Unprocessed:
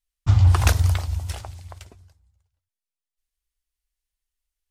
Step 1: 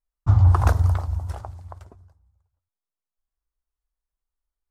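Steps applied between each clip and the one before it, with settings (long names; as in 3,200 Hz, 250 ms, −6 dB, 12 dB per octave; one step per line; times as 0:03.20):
high shelf with overshoot 1,700 Hz −12.5 dB, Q 1.5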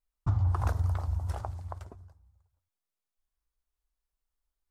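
downward compressor 3 to 1, threshold −28 dBFS, peak gain reduction 12.5 dB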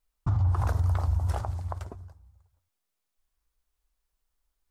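brickwall limiter −25 dBFS, peak gain reduction 8.5 dB
level +6.5 dB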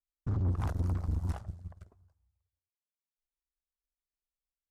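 rotating-speaker cabinet horn 8 Hz, later 1 Hz, at 0:00.30
tube saturation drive 29 dB, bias 0.7
expander for the loud parts 2.5 to 1, over −43 dBFS
level +4 dB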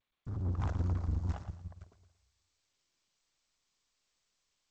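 fade in at the beginning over 0.64 s
feedback echo with a high-pass in the loop 115 ms, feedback 33%, high-pass 200 Hz, level −10 dB
level −1.5 dB
G.722 64 kbit/s 16,000 Hz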